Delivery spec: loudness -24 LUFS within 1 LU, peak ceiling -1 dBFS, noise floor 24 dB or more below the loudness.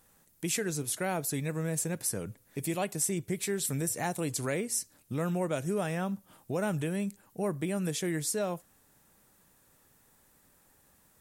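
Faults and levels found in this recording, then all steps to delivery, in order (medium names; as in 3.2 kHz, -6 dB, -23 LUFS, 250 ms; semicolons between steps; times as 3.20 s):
loudness -32.5 LUFS; peak level -17.5 dBFS; loudness target -24.0 LUFS
-> trim +8.5 dB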